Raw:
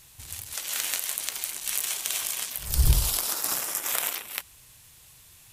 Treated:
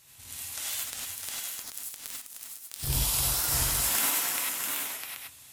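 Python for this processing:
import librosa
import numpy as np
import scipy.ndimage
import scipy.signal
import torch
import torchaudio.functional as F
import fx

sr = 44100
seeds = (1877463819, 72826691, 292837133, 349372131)

p1 = fx.cycle_switch(x, sr, every=2, mode='inverted', at=(3.47, 4.08))
p2 = scipy.signal.sosfilt(scipy.signal.butter(2, 46.0, 'highpass', fs=sr, output='sos'), p1)
p3 = fx.low_shelf(p2, sr, hz=110.0, db=-9.5)
p4 = fx.power_curve(p3, sr, exponent=3.0, at=(0.75, 2.83))
p5 = p4 + fx.echo_multitap(p4, sr, ms=(58, 305, 655, 781), db=(-10.0, -7.0, -5.0, -7.5), dry=0)
p6 = fx.rev_gated(p5, sr, seeds[0], gate_ms=120, shape='rising', drr_db=-4.0)
p7 = fx.record_warp(p6, sr, rpm=45.0, depth_cents=100.0)
y = p7 * librosa.db_to_amplitude(-6.0)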